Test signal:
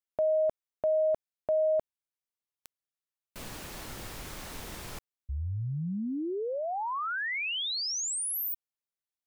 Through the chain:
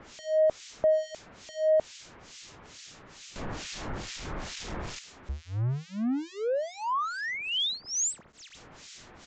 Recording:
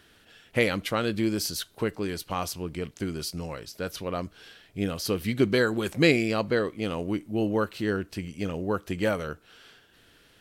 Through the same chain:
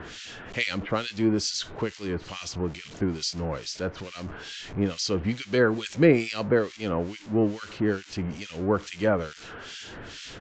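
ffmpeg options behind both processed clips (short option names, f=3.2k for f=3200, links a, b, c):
-filter_complex "[0:a]aeval=exprs='val(0)+0.5*0.0188*sgn(val(0))':c=same,acrossover=split=1900[a][b];[a]aeval=exprs='val(0)*(1-1/2+1/2*cos(2*PI*2.3*n/s))':c=same[c];[b]aeval=exprs='val(0)*(1-1/2-1/2*cos(2*PI*2.3*n/s))':c=same[d];[c][d]amix=inputs=2:normalize=0,acrossover=split=410|560|2500[e][f][g][h];[e]acompressor=mode=upward:threshold=-45dB:ratio=1.5:release=380:knee=2.83:detection=peak[i];[i][f][g][h]amix=inputs=4:normalize=0,aresample=16000,aresample=44100,volume=3.5dB"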